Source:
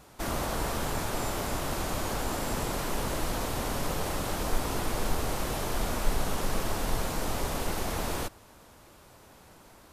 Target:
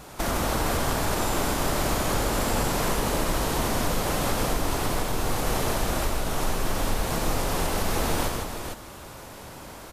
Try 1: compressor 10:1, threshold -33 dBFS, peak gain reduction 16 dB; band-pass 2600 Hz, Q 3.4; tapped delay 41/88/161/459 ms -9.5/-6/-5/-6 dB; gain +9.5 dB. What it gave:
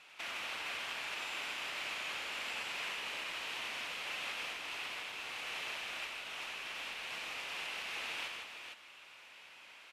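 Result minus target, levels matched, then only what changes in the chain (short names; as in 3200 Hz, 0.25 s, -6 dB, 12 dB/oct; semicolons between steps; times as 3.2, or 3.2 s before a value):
2000 Hz band +7.0 dB
remove: band-pass 2600 Hz, Q 3.4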